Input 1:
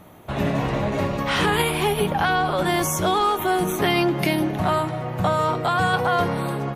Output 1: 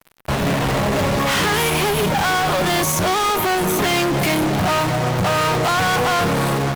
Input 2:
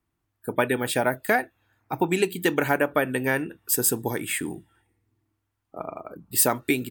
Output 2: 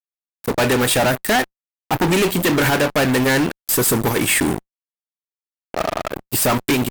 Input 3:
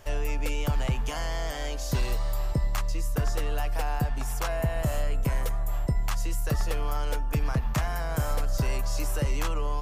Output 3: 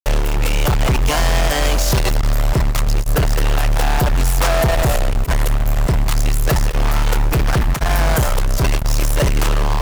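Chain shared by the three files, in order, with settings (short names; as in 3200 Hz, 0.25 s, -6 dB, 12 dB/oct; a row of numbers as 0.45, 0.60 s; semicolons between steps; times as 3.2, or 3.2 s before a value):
dynamic EQ 330 Hz, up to -3 dB, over -39 dBFS, Q 5.8; fuzz box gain 36 dB, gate -39 dBFS; AGC gain up to 7.5 dB; short-mantissa float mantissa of 2-bit; limiter -12 dBFS; match loudness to -18 LUFS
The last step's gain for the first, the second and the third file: -4.5, -1.0, +1.0 dB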